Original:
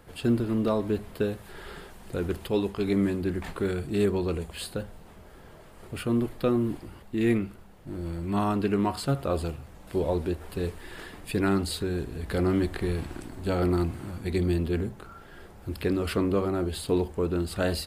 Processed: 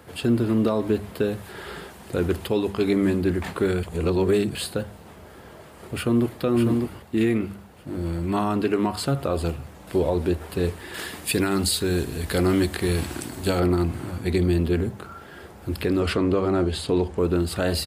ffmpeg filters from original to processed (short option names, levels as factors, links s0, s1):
-filter_complex "[0:a]asplit=2[s0][s1];[s1]afade=t=in:st=5.94:d=0.01,afade=t=out:st=6.37:d=0.01,aecho=0:1:600|1200|1800|2400:0.562341|0.168702|0.0506107|0.0151832[s2];[s0][s2]amix=inputs=2:normalize=0,asettb=1/sr,asplit=3[s3][s4][s5];[s3]atrim=end=10.944[s6];[s4]atrim=start=10.94:end=13.6,asetpts=PTS-STARTPTS,afade=t=in:d=0.004:c=qsin,afade=t=out:st=2.656:d=0.004:c=qsin,highshelf=f=3100:g=10.5[s7];[s5]atrim=start=13.596[s8];[s6][s7]acrossfade=d=0.004:c1=hsin:c2=qsin[s9];[s9][s8]acrossfade=d=0.004:c1=qsin:c2=hsin,asettb=1/sr,asplit=3[s10][s11][s12];[s10]atrim=end=16.004[s13];[s11]atrim=start=16:end=17.18,asetpts=PTS-STARTPTS,afade=t=in:d=0.004:c=qsin,afade=t=out:st=1.176:d=0.004:c=qsin,lowpass=7800[s14];[s12]atrim=start=17.176[s15];[s13][s14]acrossfade=d=0.004:c1=hsin:c2=qsin[s16];[s16][s15]acrossfade=d=0.004:c1=qsin:c2=hsin,asplit=3[s17][s18][s19];[s17]atrim=end=3.832[s20];[s18]atrim=start=3.828:end=4.552,asetpts=PTS-STARTPTS,areverse[s21];[s19]atrim=start=4.548[s22];[s20][s21]acrossfade=d=0.004:c1=hsin:c2=hsin[s23];[s23][s22]acrossfade=d=0.004:c1=hsin:c2=hsin,highpass=f=62:w=0.5412,highpass=f=62:w=1.3066,bandreject=f=50:t=h:w=6,bandreject=f=100:t=h:w=6,bandreject=f=150:t=h:w=6,bandreject=f=200:t=h:w=6,alimiter=limit=0.119:level=0:latency=1:release=154,volume=2.11"